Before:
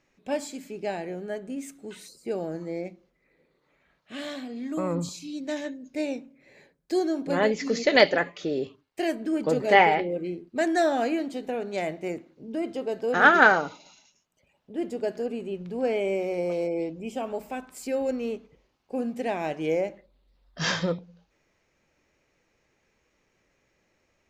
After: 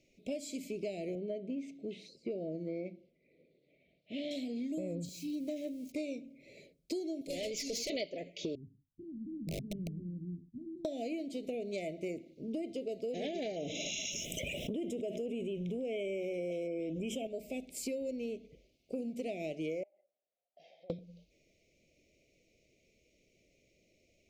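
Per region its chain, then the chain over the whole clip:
1.15–4.31 s: high-pass 92 Hz + distance through air 220 m
5.05–5.92 s: zero-crossing glitches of -37 dBFS + treble shelf 2.6 kHz -10.5 dB + band-stop 3.6 kHz, Q 25
7.21–7.90 s: RIAA curve recording + valve stage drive 27 dB, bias 0.3
8.55–10.85 s: inverse Chebyshev low-pass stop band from 670 Hz, stop band 60 dB + integer overflow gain 30.5 dB
13.56–17.27 s: Butterworth band-stop 4.5 kHz, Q 3.1 + peaking EQ 3.2 kHz +5.5 dB 0.31 oct + level flattener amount 70%
19.83–20.90 s: ladder band-pass 830 Hz, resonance 80% + compression 4:1, threshold -52 dBFS
whole clip: Chebyshev band-stop 660–2200 Hz, order 4; compression 10:1, threshold -36 dBFS; trim +1 dB

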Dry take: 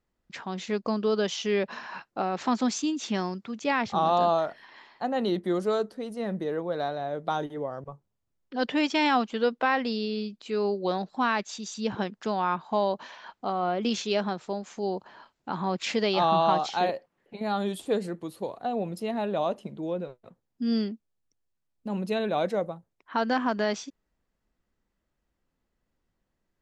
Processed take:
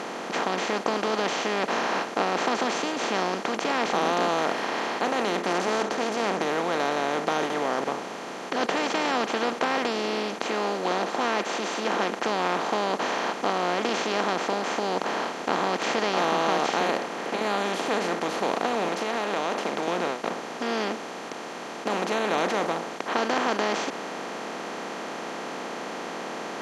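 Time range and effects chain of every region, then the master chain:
5.45–6.42 s: resonant low-pass 6.4 kHz, resonance Q 6.1 + tilt EQ -1.5 dB/octave + loudspeaker Doppler distortion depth 0.41 ms
10.47–12.24 s: high-pass 230 Hz 24 dB/octave + peaking EQ 4.8 kHz -7 dB 0.66 oct + comb 5.8 ms, depth 37%
18.88–19.88 s: frequency weighting A + compression, threshold -37 dBFS
whole clip: spectral levelling over time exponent 0.2; high-pass 220 Hz 6 dB/octave; trim -8 dB

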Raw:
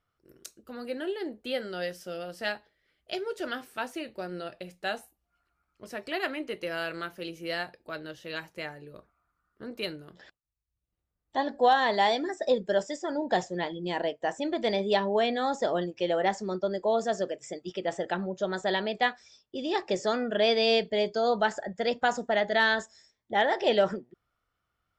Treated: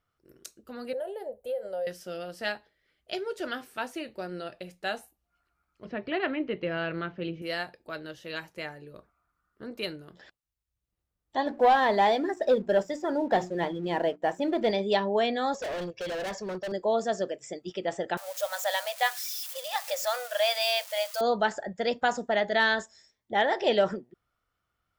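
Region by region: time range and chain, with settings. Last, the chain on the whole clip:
0.93–1.87 s: FFT filter 110 Hz 0 dB, 320 Hz -21 dB, 530 Hz +13 dB, 1.3 kHz -10 dB, 4.7 kHz -15 dB, 11 kHz +5 dB + compression, threshold -29 dBFS
5.85–7.42 s: low-pass 3.4 kHz 24 dB/octave + peaking EQ 140 Hz +10 dB 2.4 oct
11.46–14.71 s: treble shelf 2.9 kHz -11 dB + hum notches 60/120/180/240/300/360 Hz + waveshaping leveller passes 1
15.54–16.72 s: steep low-pass 6.9 kHz + comb 1.8 ms, depth 86% + overload inside the chain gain 31.5 dB
18.17–21.21 s: zero-crossing glitches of -28.5 dBFS + brick-wall FIR high-pass 490 Hz
whole clip: none

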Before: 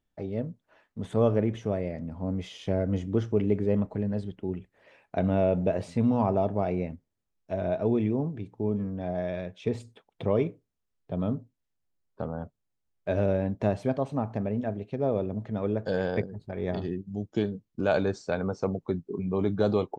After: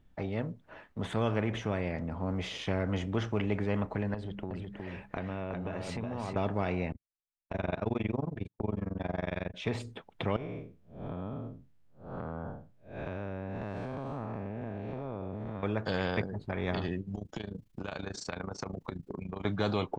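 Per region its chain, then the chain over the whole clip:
4.14–6.36 s: de-hum 66.91 Hz, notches 3 + compression 4:1, threshold -37 dBFS + delay 366 ms -6 dB
6.92–9.54 s: gate -41 dBFS, range -42 dB + AM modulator 22 Hz, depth 95%
10.36–15.63 s: spectral blur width 213 ms + compression 5:1, threshold -38 dBFS
17.15–19.45 s: AM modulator 27 Hz, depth 75% + treble shelf 2.8 kHz +11.5 dB + compression 8:1, threshold -39 dBFS
whole clip: tone controls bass +8 dB, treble -10 dB; spectrum-flattening compressor 2:1; trim -7.5 dB

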